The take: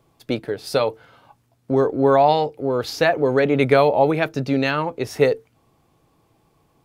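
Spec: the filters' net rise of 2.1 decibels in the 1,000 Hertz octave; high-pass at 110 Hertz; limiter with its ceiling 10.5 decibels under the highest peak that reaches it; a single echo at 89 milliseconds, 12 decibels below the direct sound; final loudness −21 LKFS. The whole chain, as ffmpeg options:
ffmpeg -i in.wav -af "highpass=110,equalizer=frequency=1000:width_type=o:gain=3,alimiter=limit=-12.5dB:level=0:latency=1,aecho=1:1:89:0.251,volume=2dB" out.wav

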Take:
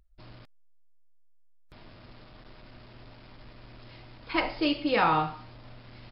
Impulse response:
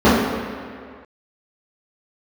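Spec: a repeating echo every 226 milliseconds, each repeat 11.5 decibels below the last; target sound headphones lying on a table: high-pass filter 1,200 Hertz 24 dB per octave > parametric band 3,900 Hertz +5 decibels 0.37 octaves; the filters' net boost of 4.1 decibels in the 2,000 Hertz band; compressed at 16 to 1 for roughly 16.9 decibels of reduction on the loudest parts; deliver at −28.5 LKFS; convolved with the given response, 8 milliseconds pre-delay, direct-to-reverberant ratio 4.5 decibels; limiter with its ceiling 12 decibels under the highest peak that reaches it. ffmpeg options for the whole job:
-filter_complex "[0:a]equalizer=frequency=2000:width_type=o:gain=5,acompressor=threshold=-35dB:ratio=16,alimiter=level_in=12dB:limit=-24dB:level=0:latency=1,volume=-12dB,aecho=1:1:226|452|678:0.266|0.0718|0.0194,asplit=2[link_01][link_02];[1:a]atrim=start_sample=2205,adelay=8[link_03];[link_02][link_03]afir=irnorm=-1:irlink=0,volume=-33.5dB[link_04];[link_01][link_04]amix=inputs=2:normalize=0,highpass=frequency=1200:width=0.5412,highpass=frequency=1200:width=1.3066,equalizer=frequency=3900:width_type=o:width=0.37:gain=5,volume=21.5dB"

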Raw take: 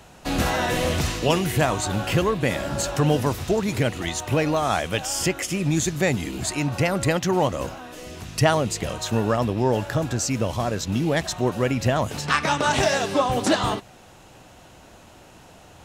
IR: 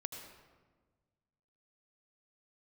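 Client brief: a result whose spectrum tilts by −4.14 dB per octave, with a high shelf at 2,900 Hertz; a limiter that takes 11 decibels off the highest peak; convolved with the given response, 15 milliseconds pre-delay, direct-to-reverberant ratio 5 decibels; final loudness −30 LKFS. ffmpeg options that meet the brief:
-filter_complex "[0:a]highshelf=frequency=2900:gain=4,alimiter=limit=-14.5dB:level=0:latency=1,asplit=2[link_01][link_02];[1:a]atrim=start_sample=2205,adelay=15[link_03];[link_02][link_03]afir=irnorm=-1:irlink=0,volume=-3.5dB[link_04];[link_01][link_04]amix=inputs=2:normalize=0,volume=-6.5dB"

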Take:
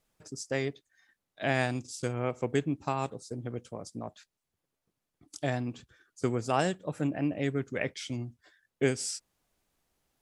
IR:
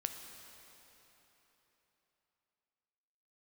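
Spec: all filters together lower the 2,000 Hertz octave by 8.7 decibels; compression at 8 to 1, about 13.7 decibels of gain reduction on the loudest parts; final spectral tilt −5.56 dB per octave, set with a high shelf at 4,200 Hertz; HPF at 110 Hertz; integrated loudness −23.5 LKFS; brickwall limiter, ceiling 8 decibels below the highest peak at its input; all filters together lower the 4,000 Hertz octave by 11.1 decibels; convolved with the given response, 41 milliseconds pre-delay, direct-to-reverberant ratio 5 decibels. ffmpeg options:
-filter_complex "[0:a]highpass=110,equalizer=frequency=2000:width_type=o:gain=-7.5,equalizer=frequency=4000:width_type=o:gain=-9,highshelf=frequency=4200:gain=-6.5,acompressor=threshold=-37dB:ratio=8,alimiter=level_in=8.5dB:limit=-24dB:level=0:latency=1,volume=-8.5dB,asplit=2[link_01][link_02];[1:a]atrim=start_sample=2205,adelay=41[link_03];[link_02][link_03]afir=irnorm=-1:irlink=0,volume=-5dB[link_04];[link_01][link_04]amix=inputs=2:normalize=0,volume=20.5dB"

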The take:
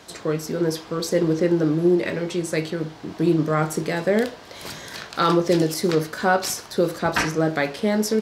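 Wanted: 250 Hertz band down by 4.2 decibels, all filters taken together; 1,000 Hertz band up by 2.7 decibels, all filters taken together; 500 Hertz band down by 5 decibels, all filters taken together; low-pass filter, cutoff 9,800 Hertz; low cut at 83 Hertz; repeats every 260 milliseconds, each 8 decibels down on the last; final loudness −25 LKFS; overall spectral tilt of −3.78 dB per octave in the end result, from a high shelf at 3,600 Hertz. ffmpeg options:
ffmpeg -i in.wav -af "highpass=83,lowpass=9800,equalizer=frequency=250:width_type=o:gain=-4,equalizer=frequency=500:width_type=o:gain=-6.5,equalizer=frequency=1000:width_type=o:gain=5.5,highshelf=frequency=3600:gain=6,aecho=1:1:260|520|780|1040|1300:0.398|0.159|0.0637|0.0255|0.0102,volume=-1.5dB" out.wav

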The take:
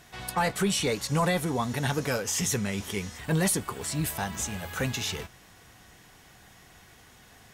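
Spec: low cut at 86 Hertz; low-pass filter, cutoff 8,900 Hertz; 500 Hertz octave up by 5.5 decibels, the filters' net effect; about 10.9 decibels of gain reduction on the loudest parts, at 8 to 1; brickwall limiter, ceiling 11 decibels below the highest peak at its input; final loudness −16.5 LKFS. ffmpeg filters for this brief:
ffmpeg -i in.wav -af "highpass=86,lowpass=8900,equalizer=frequency=500:width_type=o:gain=6.5,acompressor=threshold=-30dB:ratio=8,volume=21.5dB,alimiter=limit=-7.5dB:level=0:latency=1" out.wav

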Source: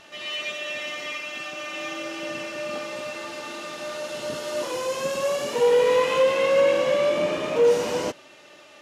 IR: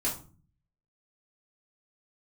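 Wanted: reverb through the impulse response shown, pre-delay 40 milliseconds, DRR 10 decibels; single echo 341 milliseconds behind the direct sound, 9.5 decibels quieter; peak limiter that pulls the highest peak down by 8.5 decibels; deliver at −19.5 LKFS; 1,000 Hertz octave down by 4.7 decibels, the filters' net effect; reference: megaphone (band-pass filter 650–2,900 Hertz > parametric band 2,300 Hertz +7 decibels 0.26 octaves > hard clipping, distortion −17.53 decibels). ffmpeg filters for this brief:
-filter_complex "[0:a]equalizer=frequency=1000:width_type=o:gain=-4.5,alimiter=limit=-20dB:level=0:latency=1,aecho=1:1:341:0.335,asplit=2[link_01][link_02];[1:a]atrim=start_sample=2205,adelay=40[link_03];[link_02][link_03]afir=irnorm=-1:irlink=0,volume=-16dB[link_04];[link_01][link_04]amix=inputs=2:normalize=0,highpass=650,lowpass=2900,equalizer=frequency=2300:width_type=o:width=0.26:gain=7,asoftclip=type=hard:threshold=-26.5dB,volume=12.5dB"

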